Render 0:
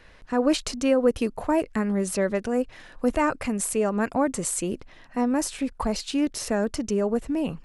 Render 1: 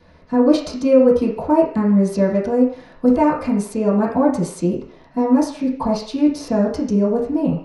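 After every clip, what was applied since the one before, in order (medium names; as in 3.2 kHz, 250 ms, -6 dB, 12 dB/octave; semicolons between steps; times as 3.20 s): reverberation RT60 0.50 s, pre-delay 3 ms, DRR -10.5 dB; trim -11 dB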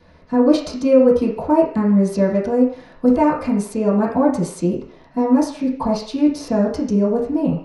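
no audible change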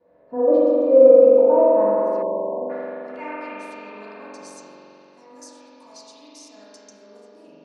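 band-pass sweep 540 Hz -> 7 kHz, 0.98–4.85 s; spring tank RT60 3.4 s, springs 43 ms, chirp 45 ms, DRR -6.5 dB; spectral selection erased 2.22–2.70 s, 1.1–6.5 kHz; trim -4 dB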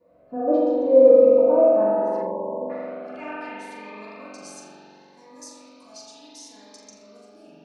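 flutter echo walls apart 7.2 m, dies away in 0.36 s; Shepard-style phaser rising 0.71 Hz; trim +1.5 dB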